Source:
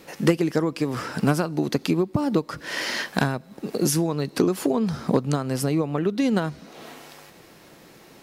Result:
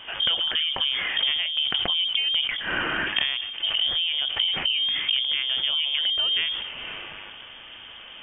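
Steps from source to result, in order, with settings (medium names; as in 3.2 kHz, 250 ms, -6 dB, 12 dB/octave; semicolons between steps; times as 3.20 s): compression 10:1, threshold -28 dBFS, peak gain reduction 16 dB; transient shaper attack -1 dB, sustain +7 dB; frequency inversion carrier 3.4 kHz; decay stretcher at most 42 dB/s; trim +6.5 dB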